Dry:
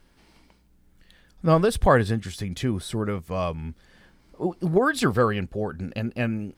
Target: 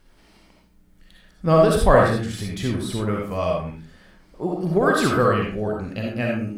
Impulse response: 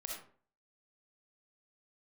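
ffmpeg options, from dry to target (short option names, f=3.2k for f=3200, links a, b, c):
-filter_complex "[1:a]atrim=start_sample=2205,afade=t=out:st=0.31:d=0.01,atrim=end_sample=14112,asetrate=43218,aresample=44100[a];[0:a][a]afir=irnorm=-1:irlink=0,volume=5dB"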